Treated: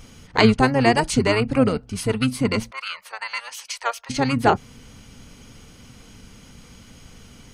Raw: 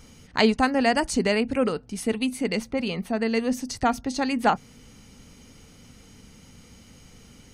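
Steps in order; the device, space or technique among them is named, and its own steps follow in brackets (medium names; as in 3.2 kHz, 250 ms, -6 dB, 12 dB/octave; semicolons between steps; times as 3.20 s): 2.71–4.10 s: elliptic high-pass 1 kHz, stop band 40 dB; octave pedal (harmony voices -12 st -4 dB); trim +3 dB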